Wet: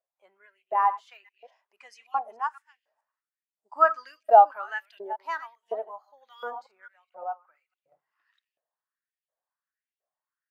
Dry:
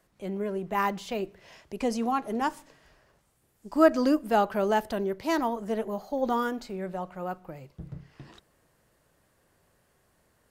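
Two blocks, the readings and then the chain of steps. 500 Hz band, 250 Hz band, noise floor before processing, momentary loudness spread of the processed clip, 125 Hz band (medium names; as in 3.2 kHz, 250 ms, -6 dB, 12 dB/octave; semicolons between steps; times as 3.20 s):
-1.5 dB, under -25 dB, -69 dBFS, 21 LU, under -35 dB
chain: chunks repeated in reverse 215 ms, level -10.5 dB; LFO high-pass saw up 1.4 Hz 560–3000 Hz; spectral contrast expander 1.5:1; trim +2.5 dB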